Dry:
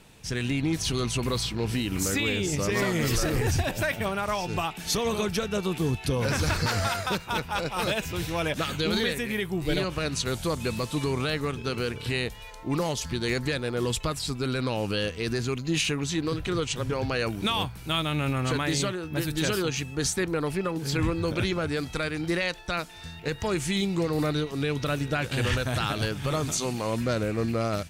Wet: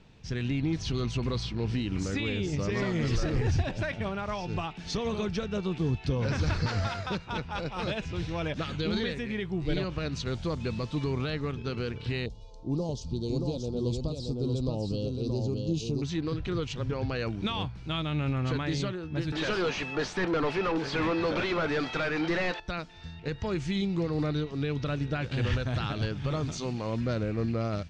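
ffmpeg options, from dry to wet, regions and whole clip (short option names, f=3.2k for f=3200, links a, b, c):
-filter_complex "[0:a]asettb=1/sr,asplit=3[a][b][c];[a]atrim=end=12.264[d];[b]atrim=start=12.26:end=16.02,asetpts=PTS-STARTPTS,afade=t=in:d=0.004:c=qsin,afade=t=out:st=3.756:d=0.004:c=qsin,asuperstop=centerf=1800:order=4:qfactor=0.5,aecho=1:1:627:0.631,atrim=end_sample=165816[e];[c]atrim=start=16.016[f];[d][e]acrossfade=d=0.004:c1=hsin:c2=qsin[g];[g][f]acrossfade=d=0.004:c1=qsin:c2=hsin,asettb=1/sr,asplit=3[h][i][j];[h]atrim=end=19.324[k];[i]atrim=start=19.32:end=22.6,asetpts=PTS-STARTPTS,afade=t=in:d=0.004:c=qsin,afade=t=out:st=3.276:d=0.004:c=qsin,highpass=f=520:p=1,asplit=2[l][m];[m]highpass=f=720:p=1,volume=29dB,asoftclip=type=tanh:threshold=-14dB[n];[l][n]amix=inputs=2:normalize=0,lowpass=f=1.7k:p=1,volume=-6dB[o];[j]atrim=start=22.596[p];[k][o]acrossfade=d=0.004:c1=hsin:c2=qsin[q];[q][p]acrossfade=d=0.004:c1=qsin:c2=hsin,lowpass=f=5.7k:w=0.5412,lowpass=f=5.7k:w=1.3066,lowshelf=f=330:g=7.5,volume=-7dB"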